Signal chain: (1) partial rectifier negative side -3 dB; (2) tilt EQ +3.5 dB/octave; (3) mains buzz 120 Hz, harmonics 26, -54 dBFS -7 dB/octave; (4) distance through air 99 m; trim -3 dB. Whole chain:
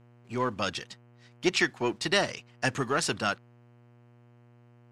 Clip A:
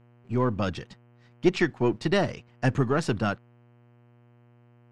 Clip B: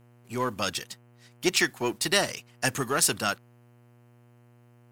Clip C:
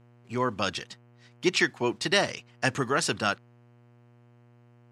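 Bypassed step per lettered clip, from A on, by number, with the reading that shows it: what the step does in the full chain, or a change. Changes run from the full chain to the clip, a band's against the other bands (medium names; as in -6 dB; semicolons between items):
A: 2, 8 kHz band -11.5 dB; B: 4, 8 kHz band +9.0 dB; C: 1, distortion -15 dB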